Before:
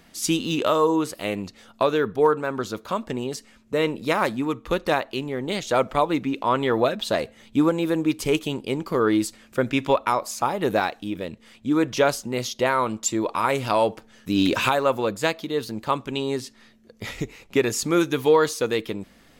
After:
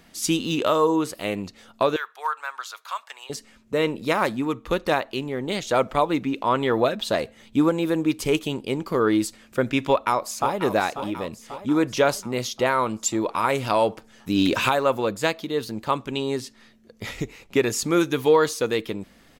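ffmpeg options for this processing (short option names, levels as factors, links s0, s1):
-filter_complex "[0:a]asettb=1/sr,asplit=3[s0][s1][s2];[s0]atrim=end=1.964[s3];[s1]atrim=start=1.96:end=3.3,asetpts=PTS-STARTPTS,afade=t=in:d=0.004:c=qsin,afade=t=out:st=1.336:d=0.004:c=qsin,highpass=f=940:w=0.5412,highpass=f=940:w=1.3066[s4];[s2]atrim=start=3.296[s5];[s3][s4]acrossfade=d=0.004:c1=hsin:c2=qsin[s6];[s6][s5]acrossfade=d=0.004:c1=qsin:c2=hsin,asplit=2[s7][s8];[s8]afade=t=in:st=9.86:d=0.01,afade=t=out:st=10.61:d=0.01,aecho=0:1:540|1080|1620|2160|2700|3240|3780:0.298538|0.179123|0.107474|0.0644843|0.0386906|0.0232143|0.0139286[s9];[s7][s9]amix=inputs=2:normalize=0"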